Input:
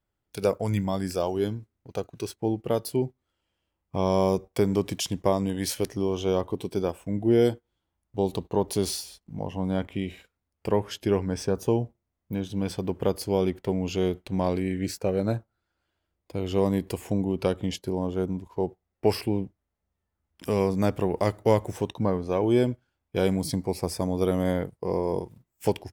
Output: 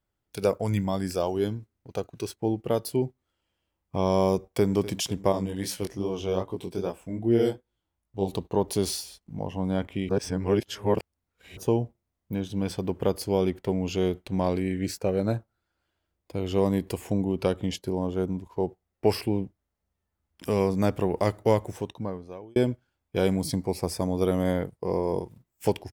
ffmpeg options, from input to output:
ffmpeg -i in.wav -filter_complex "[0:a]asplit=2[link_01][link_02];[link_02]afade=type=in:start_time=4.35:duration=0.01,afade=type=out:start_time=4.75:duration=0.01,aecho=0:1:250|500|750|1000|1250|1500|1750|2000|2250|2500:0.149624|0.112218|0.0841633|0.0631224|0.0473418|0.0355064|0.0266298|0.0199723|0.0149793|0.0112344[link_03];[link_01][link_03]amix=inputs=2:normalize=0,asettb=1/sr,asplit=3[link_04][link_05][link_06];[link_04]atrim=end=5.324[link_07];[link_05]atrim=start=5.32:end=8.28,asetpts=PTS-STARTPTS,afade=type=in:duration=0.004:curve=qsin,afade=type=out:start_time=2.956:duration=0.004:curve=qsin,flanger=delay=16.5:depth=6.7:speed=2.5[link_08];[link_06]atrim=start=8.276[link_09];[link_07][link_08]acrossfade=duration=0.004:curve1=hsin:curve2=qsin[link_10];[link_10][link_09]acrossfade=duration=0.004:curve1=qsin:curve2=hsin,asplit=4[link_11][link_12][link_13][link_14];[link_11]atrim=end=10.092[link_15];[link_12]atrim=start=10.088:end=11.572,asetpts=PTS-STARTPTS,areverse[link_16];[link_13]atrim=start=11.568:end=22.56,asetpts=PTS-STARTPTS,afade=type=out:start_time=9.832:duration=1.16[link_17];[link_14]atrim=start=22.56,asetpts=PTS-STARTPTS,afade=type=in:duration=0.004:curve=hsin[link_18];[link_15][link_16]acrossfade=duration=0.004:curve1=hsin:curve2=hsin[link_19];[link_17][link_18]concat=n=2:v=0:a=1[link_20];[link_19][link_20]acrossfade=duration=0.004:curve1=hsin:curve2=hsin" out.wav

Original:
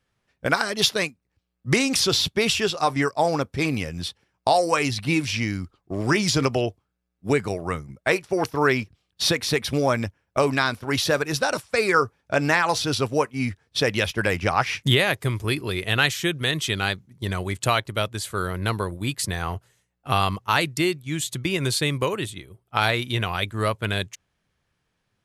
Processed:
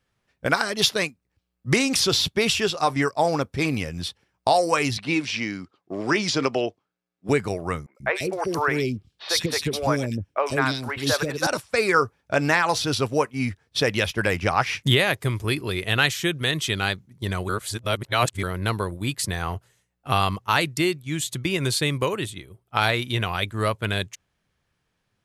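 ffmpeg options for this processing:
ffmpeg -i in.wav -filter_complex "[0:a]asettb=1/sr,asplit=3[link_01][link_02][link_03];[link_01]atrim=end=4.974[link_04];[link_02]atrim=start=4.97:end=7.29,asetpts=PTS-STARTPTS,afade=type=in:duration=0.004:curve=qsin,afade=type=out:start_time=2.316:duration=0.004:curve=qsin,highpass=220,lowpass=6000[link_05];[link_03]atrim=start=7.286[link_06];[link_04][link_05]acrossfade=duration=0.004:curve1=hsin:curve2=qsin[link_07];[link_07][link_06]acrossfade=duration=0.004:curve1=qsin:curve2=hsin,asettb=1/sr,asplit=3[link_08][link_09][link_10];[link_08]atrim=end=7.864[link_11];[link_09]atrim=start=7.86:end=11.47,asetpts=PTS-STARTPTS,afade=type=in:duration=0.004:curve=qsin,afade=type=out:start_time=3.606:duration=0.004:curve=qsin,acrossover=split=460|2600[link_12][link_13][link_14];[link_14]adelay=90[link_15];[link_12]adelay=140[link_16];[link_16][link_13][link_15]amix=inputs=3:normalize=0,atrim=end_sample=159201[link_17];[link_10]atrim=start=11.466[link_18];[link_11][link_17]acrossfade=duration=0.004:curve1=hsin:curve2=qsin[link_19];[link_19][link_18]acrossfade=duration=0.004:curve1=qsin:curve2=hsin,asplit=3[link_20][link_21][link_22];[link_20]atrim=end=17.492[link_23];[link_21]atrim=start=17.488:end=18.432,asetpts=PTS-STARTPTS,areverse[link_24];[link_22]atrim=start=18.428[link_25];[link_23][link_24]acrossfade=duration=0.004:curve1=hsin:curve2=hsin[link_26];[link_26][link_25]acrossfade=duration=0.004:curve1=hsin:curve2=hsin" out.wav

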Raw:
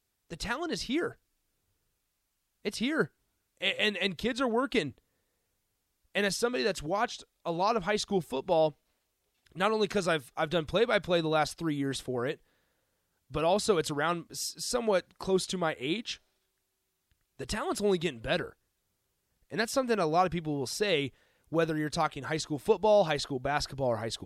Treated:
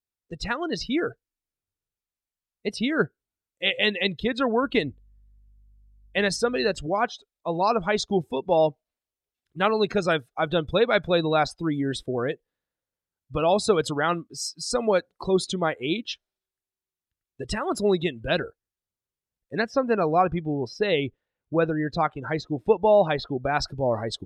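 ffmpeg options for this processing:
ffmpeg -i in.wav -filter_complex "[0:a]asettb=1/sr,asplit=3[link_01][link_02][link_03];[link_01]atrim=end=4.624[link_04];[link_02]atrim=start=4.62:end=6.79,asetpts=PTS-STARTPTS,afade=type=in:duration=0.004:curve=qsin,afade=type=out:start_time=2.166:duration=0.004:curve=qsin,aeval=exprs='val(0)+0.002*(sin(2*PI*50*n/s)+sin(2*PI*2*50*n/s)/2+sin(2*PI*3*50*n/s)/3+sin(2*PI*4*50*n/s)/4+sin(2*PI*5*50*n/s)/5)':channel_layout=same[link_05];[link_03]atrim=start=6.786[link_06];[link_04][link_05]acrossfade=duration=0.004:curve1=hsin:curve2=qsin[link_07];[link_07][link_06]acrossfade=duration=0.004:curve1=qsin:curve2=hsin,asettb=1/sr,asplit=3[link_08][link_09][link_10];[link_08]atrim=end=19.594[link_11];[link_09]atrim=start=19.59:end=23.32,asetpts=PTS-STARTPTS,afade=type=in:duration=0.004:curve=qsin,afade=type=out:start_time=3.726:duration=0.004:curve=qsin,equalizer=frequency=12000:width_type=o:width=1.7:gain=-12[link_12];[link_10]atrim=start=23.316[link_13];[link_11][link_12]acrossfade=duration=0.004:curve1=hsin:curve2=qsin[link_14];[link_14][link_13]acrossfade=duration=0.004:curve1=qsin:curve2=hsin,afftdn=noise_reduction=21:noise_floor=-39,volume=5.5dB" out.wav

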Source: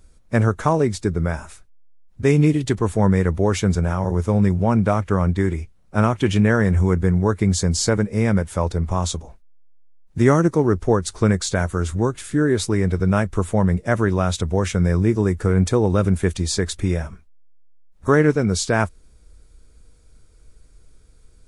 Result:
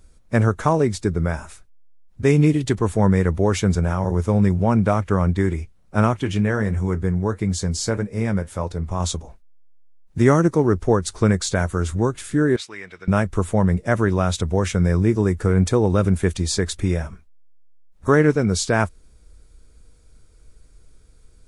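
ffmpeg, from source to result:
ffmpeg -i in.wav -filter_complex "[0:a]asettb=1/sr,asplit=3[link_01][link_02][link_03];[link_01]atrim=end=6.204[link_04];[link_02]atrim=start=6.2:end=9,asetpts=PTS-STARTPTS,afade=type=in:duration=0.004:curve=qsin,afade=type=out:start_time=2.796:duration=0.004:curve=qsin,flanger=delay=6.4:depth=4.7:regen=-65:speed=1.6:shape=sinusoidal[link_05];[link_03]atrim=start=8.996[link_06];[link_04][link_05]acrossfade=duration=0.004:curve1=hsin:curve2=qsin[link_07];[link_07][link_06]acrossfade=duration=0.004:curve1=qsin:curve2=hsin,asettb=1/sr,asplit=3[link_08][link_09][link_10];[link_08]atrim=end=12.564[link_11];[link_09]atrim=start=12.56:end=13.08,asetpts=PTS-STARTPTS,afade=type=in:duration=0.004:curve=qsin,afade=type=out:start_time=0.516:duration=0.004:curve=qsin,bandpass=frequency=2500:width_type=q:width=1.3[link_12];[link_10]atrim=start=13.076[link_13];[link_11][link_12]acrossfade=duration=0.004:curve1=hsin:curve2=qsin[link_14];[link_14][link_13]acrossfade=duration=0.004:curve1=qsin:curve2=hsin" out.wav

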